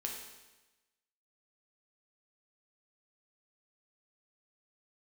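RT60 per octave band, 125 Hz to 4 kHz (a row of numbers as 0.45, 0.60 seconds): 1.1, 1.1, 1.1, 1.1, 1.1, 1.1 seconds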